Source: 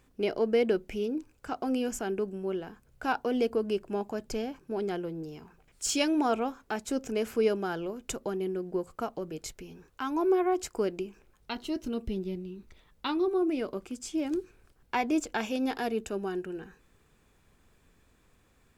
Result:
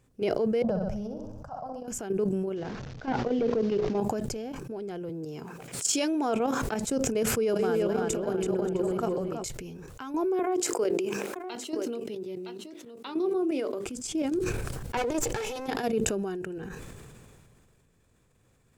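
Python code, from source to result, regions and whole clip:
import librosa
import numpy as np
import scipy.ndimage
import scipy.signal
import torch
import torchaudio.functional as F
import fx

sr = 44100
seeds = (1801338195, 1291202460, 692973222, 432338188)

y = fx.chain(x, sr, fx.curve_eq(hz=(180.0, 280.0, 400.0, 600.0, 1100.0, 2300.0, 5800.0, 8200.0, 12000.0), db=(0, -22, -25, 0, -4, -28, -12, -27, -21)),
    fx.room_flutter(wall_m=11.0, rt60_s=0.58), at=(0.62, 1.88))
y = fx.chain(y, sr, fx.delta_mod(bps=32000, step_db=-44.0),
    fx.lowpass(hz=3900.0, slope=6),
    fx.hum_notches(base_hz=60, count=9), at=(2.56, 3.98))
y = fx.chain(y, sr, fx.highpass(hz=180.0, slope=12),
    fx.pre_swell(db_per_s=79.0), at=(5.09, 6.62))
y = fx.chain(y, sr, fx.reverse_delay(ms=288, wet_db=-7),
    fx.echo_filtered(ms=331, feedback_pct=39, hz=3900.0, wet_db=-3.5), at=(7.25, 9.44))
y = fx.chain(y, sr, fx.highpass(hz=270.0, slope=24),
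    fx.hum_notches(base_hz=50, count=9),
    fx.echo_single(ms=965, db=-11.5), at=(10.39, 13.86))
y = fx.chain(y, sr, fx.lower_of_two(delay_ms=2.3),
    fx.transient(attack_db=-5, sustain_db=6), at=(14.97, 15.68))
y = fx.level_steps(y, sr, step_db=10)
y = fx.graphic_eq(y, sr, hz=(125, 500, 8000), db=(11, 5, 6))
y = fx.sustainer(y, sr, db_per_s=23.0)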